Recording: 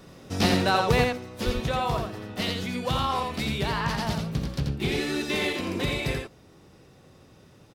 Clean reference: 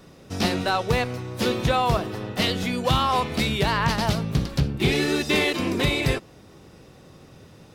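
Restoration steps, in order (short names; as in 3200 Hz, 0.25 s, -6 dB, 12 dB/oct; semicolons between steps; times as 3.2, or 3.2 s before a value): de-plosive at 1.45; inverse comb 85 ms -4.5 dB; gain correction +6.5 dB, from 1.09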